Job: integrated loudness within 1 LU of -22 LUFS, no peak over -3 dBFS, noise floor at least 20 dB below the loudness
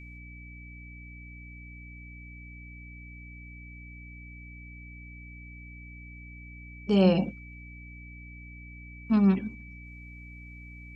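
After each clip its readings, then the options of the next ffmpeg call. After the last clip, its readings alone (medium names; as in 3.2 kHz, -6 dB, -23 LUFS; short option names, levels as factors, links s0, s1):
hum 60 Hz; highest harmonic 300 Hz; hum level -44 dBFS; steady tone 2.3 kHz; tone level -48 dBFS; loudness -25.5 LUFS; peak level -10.5 dBFS; loudness target -22.0 LUFS
-> -af "bandreject=f=60:t=h:w=4,bandreject=f=120:t=h:w=4,bandreject=f=180:t=h:w=4,bandreject=f=240:t=h:w=4,bandreject=f=300:t=h:w=4"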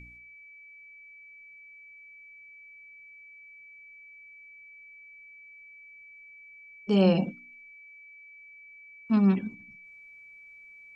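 hum not found; steady tone 2.3 kHz; tone level -48 dBFS
-> -af "bandreject=f=2300:w=30"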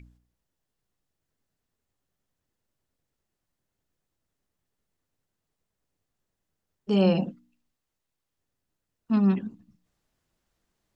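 steady tone not found; loudness -25.0 LUFS; peak level -11.5 dBFS; loudness target -22.0 LUFS
-> -af "volume=1.41"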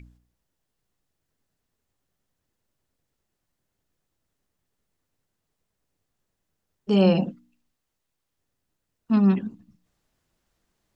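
loudness -22.0 LUFS; peak level -8.5 dBFS; noise floor -81 dBFS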